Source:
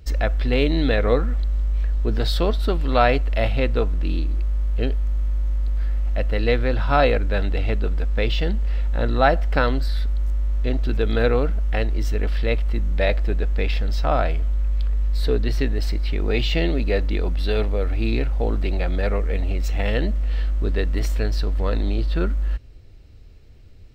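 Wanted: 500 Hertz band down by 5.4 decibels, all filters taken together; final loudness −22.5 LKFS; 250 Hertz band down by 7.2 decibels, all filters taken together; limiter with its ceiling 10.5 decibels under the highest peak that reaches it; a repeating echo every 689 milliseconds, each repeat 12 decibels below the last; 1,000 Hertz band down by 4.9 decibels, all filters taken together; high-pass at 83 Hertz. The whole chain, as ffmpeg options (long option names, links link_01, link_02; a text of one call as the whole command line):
ffmpeg -i in.wav -af "highpass=83,equalizer=frequency=250:width_type=o:gain=-8,equalizer=frequency=500:width_type=o:gain=-3,equalizer=frequency=1000:width_type=o:gain=-5.5,alimiter=limit=-16.5dB:level=0:latency=1,aecho=1:1:689|1378|2067:0.251|0.0628|0.0157,volume=8.5dB" out.wav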